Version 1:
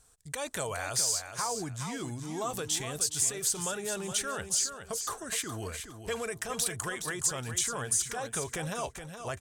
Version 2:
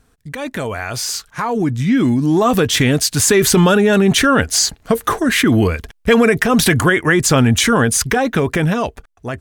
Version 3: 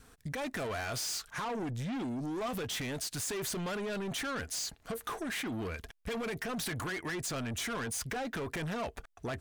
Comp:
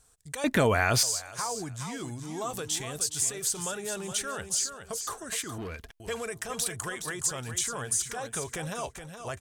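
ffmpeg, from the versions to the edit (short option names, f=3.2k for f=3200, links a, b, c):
-filter_complex "[0:a]asplit=3[a][b][c];[a]atrim=end=0.442[d];[1:a]atrim=start=0.438:end=1.032[e];[b]atrim=start=1.028:end=5.582[f];[2:a]atrim=start=5.578:end=6.002[g];[c]atrim=start=5.998[h];[d][e]acrossfade=d=0.004:c1=hsin:c2=hsin[i];[i][f]acrossfade=d=0.004:c1=hsin:c2=hsin[j];[j][g]acrossfade=d=0.004:c1=hsin:c2=hsin[k];[k][h]acrossfade=d=0.004:c1=hsin:c2=hsin"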